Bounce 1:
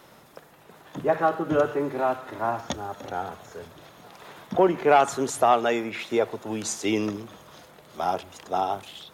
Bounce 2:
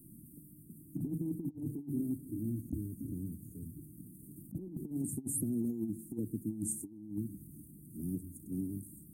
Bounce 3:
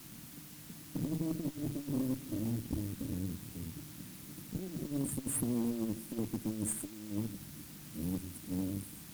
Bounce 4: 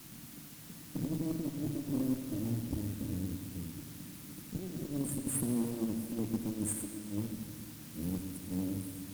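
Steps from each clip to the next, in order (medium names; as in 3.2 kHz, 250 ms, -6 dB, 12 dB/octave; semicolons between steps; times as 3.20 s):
Chebyshev band-stop 310–8700 Hz, order 5; compressor with a negative ratio -37 dBFS, ratio -0.5; trim +1 dB
in parallel at -2.5 dB: peak limiter -33 dBFS, peak gain reduction 10.5 dB; on the sum: added noise white -51 dBFS; Chebyshev shaper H 3 -20 dB, 6 -23 dB, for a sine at -19.5 dBFS
reverberation RT60 2.2 s, pre-delay 53 ms, DRR 7 dB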